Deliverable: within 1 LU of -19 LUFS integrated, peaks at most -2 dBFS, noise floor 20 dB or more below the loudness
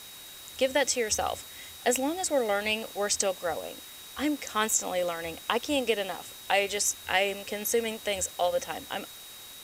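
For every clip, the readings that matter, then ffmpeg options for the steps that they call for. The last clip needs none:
steady tone 3800 Hz; tone level -48 dBFS; noise floor -46 dBFS; noise floor target -49 dBFS; loudness -28.5 LUFS; peak -10.5 dBFS; loudness target -19.0 LUFS
-> -af "bandreject=f=3.8k:w=30"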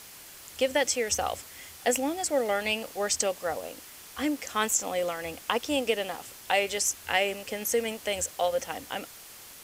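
steady tone none; noise floor -48 dBFS; noise floor target -49 dBFS
-> -af "afftdn=nr=6:nf=-48"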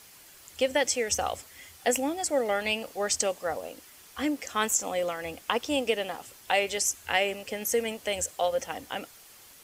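noise floor -53 dBFS; loudness -29.0 LUFS; peak -11.0 dBFS; loudness target -19.0 LUFS
-> -af "volume=10dB,alimiter=limit=-2dB:level=0:latency=1"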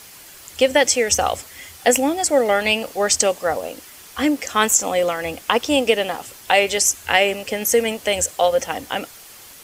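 loudness -19.0 LUFS; peak -2.0 dBFS; noise floor -43 dBFS

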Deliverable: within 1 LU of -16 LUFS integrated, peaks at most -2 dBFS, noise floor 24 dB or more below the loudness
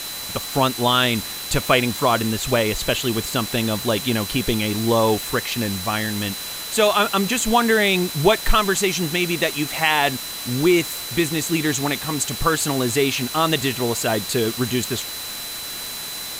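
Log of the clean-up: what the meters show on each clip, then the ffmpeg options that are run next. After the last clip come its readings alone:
steady tone 4000 Hz; tone level -33 dBFS; noise floor -31 dBFS; noise floor target -45 dBFS; loudness -20.5 LUFS; peak -2.5 dBFS; loudness target -16.0 LUFS
-> -af "bandreject=f=4k:w=30"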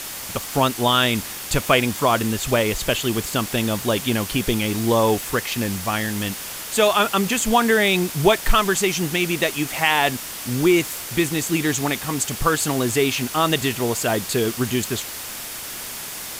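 steady tone none; noise floor -33 dBFS; noise floor target -45 dBFS
-> -af "afftdn=nr=12:nf=-33"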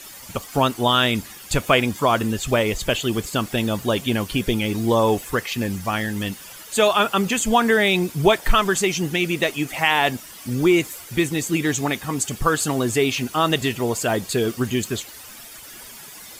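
noise floor -41 dBFS; noise floor target -45 dBFS
-> -af "afftdn=nr=6:nf=-41"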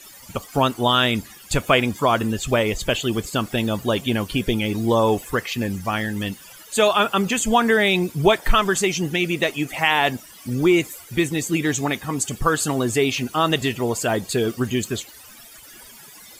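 noise floor -44 dBFS; noise floor target -45 dBFS
-> -af "afftdn=nr=6:nf=-44"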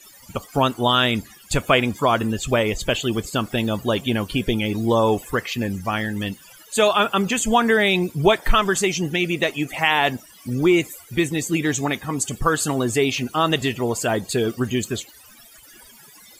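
noise floor -48 dBFS; loudness -21.0 LUFS; peak -3.0 dBFS; loudness target -16.0 LUFS
-> -af "volume=5dB,alimiter=limit=-2dB:level=0:latency=1"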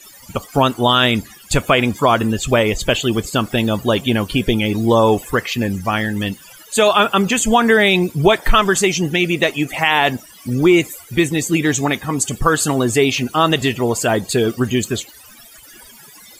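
loudness -16.5 LUFS; peak -2.0 dBFS; noise floor -43 dBFS

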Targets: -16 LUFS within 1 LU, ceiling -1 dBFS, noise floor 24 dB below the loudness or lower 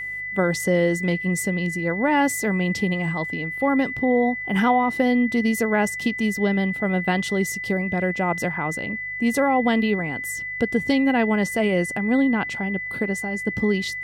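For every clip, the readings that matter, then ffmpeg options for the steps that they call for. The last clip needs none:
hum 50 Hz; harmonics up to 150 Hz; hum level -51 dBFS; steady tone 2000 Hz; tone level -28 dBFS; loudness -22.5 LUFS; peak -7.0 dBFS; loudness target -16.0 LUFS
-> -af "bandreject=f=50:t=h:w=4,bandreject=f=100:t=h:w=4,bandreject=f=150:t=h:w=4"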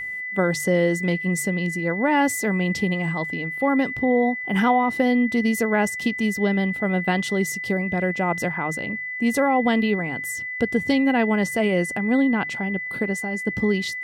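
hum none; steady tone 2000 Hz; tone level -28 dBFS
-> -af "bandreject=f=2k:w=30"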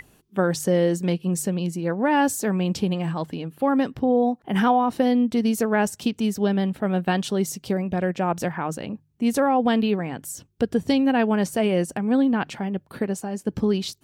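steady tone none; loudness -23.5 LUFS; peak -7.5 dBFS; loudness target -16.0 LUFS
-> -af "volume=7.5dB,alimiter=limit=-1dB:level=0:latency=1"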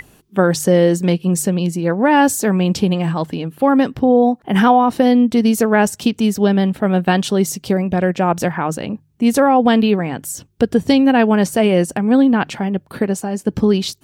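loudness -16.0 LUFS; peak -1.0 dBFS; noise floor -53 dBFS

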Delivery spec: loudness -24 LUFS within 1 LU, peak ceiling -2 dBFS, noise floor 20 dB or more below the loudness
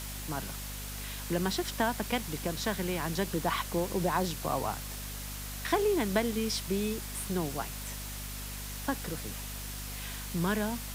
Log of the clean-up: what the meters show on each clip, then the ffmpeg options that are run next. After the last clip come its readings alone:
hum 50 Hz; harmonics up to 250 Hz; hum level -40 dBFS; noise floor -40 dBFS; noise floor target -53 dBFS; loudness -33.0 LUFS; peak -15.0 dBFS; loudness target -24.0 LUFS
-> -af "bandreject=f=50:t=h:w=6,bandreject=f=100:t=h:w=6,bandreject=f=150:t=h:w=6,bandreject=f=200:t=h:w=6,bandreject=f=250:t=h:w=6"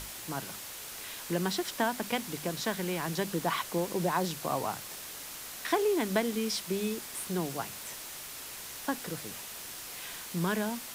hum none; noise floor -43 dBFS; noise floor target -54 dBFS
-> -af "afftdn=nr=11:nf=-43"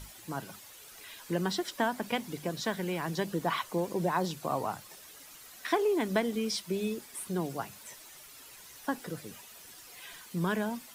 noise floor -52 dBFS; noise floor target -54 dBFS
-> -af "afftdn=nr=6:nf=-52"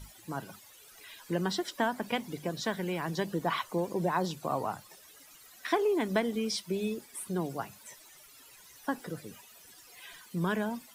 noise floor -56 dBFS; loudness -33.5 LUFS; peak -15.5 dBFS; loudness target -24.0 LUFS
-> -af "volume=9.5dB"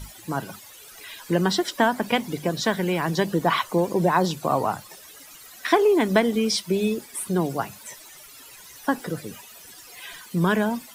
loudness -24.0 LUFS; peak -6.0 dBFS; noise floor -46 dBFS

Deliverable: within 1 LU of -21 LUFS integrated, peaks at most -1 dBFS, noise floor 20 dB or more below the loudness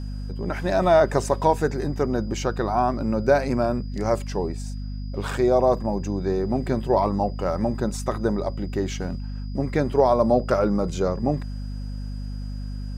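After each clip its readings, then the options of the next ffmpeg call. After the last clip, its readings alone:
hum 50 Hz; harmonics up to 250 Hz; hum level -28 dBFS; steady tone 4900 Hz; tone level -52 dBFS; loudness -23.5 LUFS; peak -6.0 dBFS; loudness target -21.0 LUFS
-> -af "bandreject=f=50:t=h:w=6,bandreject=f=100:t=h:w=6,bandreject=f=150:t=h:w=6,bandreject=f=200:t=h:w=6,bandreject=f=250:t=h:w=6"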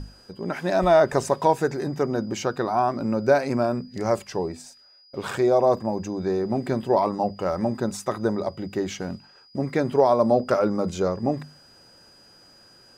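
hum none; steady tone 4900 Hz; tone level -52 dBFS
-> -af "bandreject=f=4.9k:w=30"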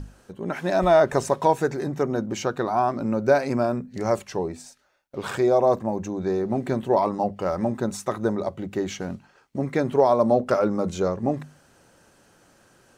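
steady tone none; loudness -24.0 LUFS; peak -6.5 dBFS; loudness target -21.0 LUFS
-> -af "volume=3dB"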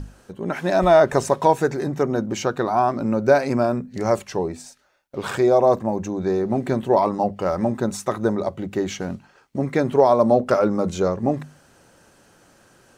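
loudness -21.0 LUFS; peak -3.5 dBFS; noise floor -56 dBFS

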